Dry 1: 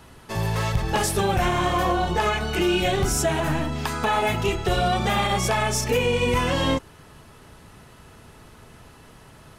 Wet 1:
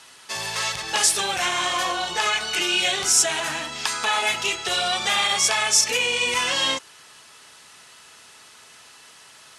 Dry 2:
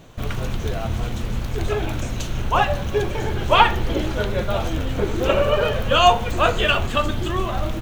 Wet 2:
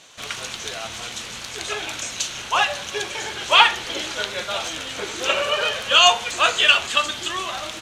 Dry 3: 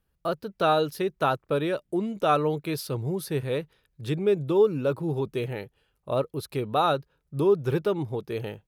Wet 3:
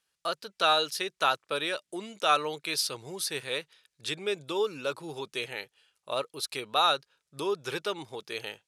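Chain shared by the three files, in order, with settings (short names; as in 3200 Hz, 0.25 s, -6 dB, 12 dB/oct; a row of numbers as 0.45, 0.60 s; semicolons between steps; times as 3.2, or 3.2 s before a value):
weighting filter ITU-R 468; gain -1.5 dB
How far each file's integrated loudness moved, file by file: +2.0, +1.5, -3.5 LU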